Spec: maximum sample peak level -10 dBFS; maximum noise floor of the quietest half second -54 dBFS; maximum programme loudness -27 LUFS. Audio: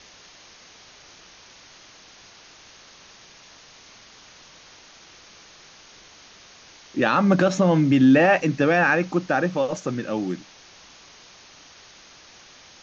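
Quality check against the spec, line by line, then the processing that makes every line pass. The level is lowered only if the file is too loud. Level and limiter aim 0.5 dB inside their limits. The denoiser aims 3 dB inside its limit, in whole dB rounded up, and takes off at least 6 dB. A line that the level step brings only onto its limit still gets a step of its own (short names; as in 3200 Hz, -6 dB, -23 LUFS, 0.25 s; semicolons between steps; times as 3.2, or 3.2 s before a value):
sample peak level -4.5 dBFS: fail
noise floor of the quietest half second -49 dBFS: fail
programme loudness -20.5 LUFS: fail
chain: gain -7 dB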